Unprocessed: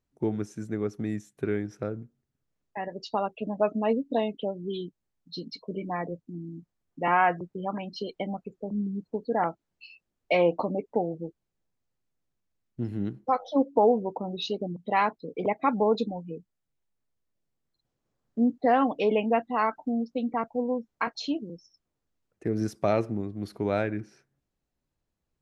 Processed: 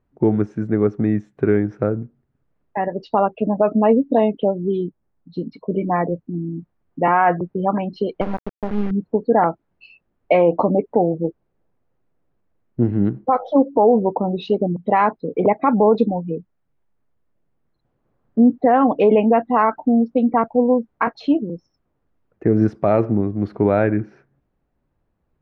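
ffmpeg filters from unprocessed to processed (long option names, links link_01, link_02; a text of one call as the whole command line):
ffmpeg -i in.wav -filter_complex "[0:a]asettb=1/sr,asplit=3[link_01][link_02][link_03];[link_01]atrim=end=4.584[link_04];[link_02]atrim=start=4.58:end=5.66,asetpts=PTS-STARTPTS,afade=type=in:duration=0.004:curve=qsin,afade=type=out:start_time=1.076:duration=0.004:curve=qsin,highshelf=frequency=2600:gain=-10.5[link_05];[link_03]atrim=start=5.656[link_06];[link_04][link_05]acrossfade=duration=0.004:curve1=hsin:curve2=qsin[link_07];[link_07][link_06]acrossfade=duration=0.004:curve1=qsin:curve2=hsin,asettb=1/sr,asplit=3[link_08][link_09][link_10];[link_08]atrim=end=8.214[link_11];[link_09]atrim=start=8.21:end=8.91,asetpts=PTS-STARTPTS,afade=type=in:duration=0.004:curve=qsin,afade=type=out:start_time=0.696:duration=0.004:curve=qsin,acrusher=bits=4:dc=4:mix=0:aa=0.000001[link_12];[link_10]atrim=start=8.906[link_13];[link_11][link_12]acrossfade=duration=0.004:curve1=hsin:curve2=qsin[link_14];[link_14][link_13]acrossfade=duration=0.004:curve1=qsin:curve2=hsin,asettb=1/sr,asplit=3[link_15][link_16][link_17];[link_15]atrim=end=11.244[link_18];[link_16]atrim=start=11.24:end=12.91,asetpts=PTS-STARTPTS,afade=type=in:duration=0.004:curve=qsin,afade=type=out:start_time=1.666:duration=0.004:curve=qsin,equalizer=frequency=480:width_type=o:width=1.6:gain=4.5[link_19];[link_17]atrim=start=12.906[link_20];[link_18][link_19]acrossfade=duration=0.004:curve1=hsin:curve2=qsin[link_21];[link_21][link_20]acrossfade=duration=0.004:curve1=qsin:curve2=hsin,lowpass=1600,alimiter=level_in=17dB:limit=-1dB:release=50:level=0:latency=1,volume=-4.5dB" out.wav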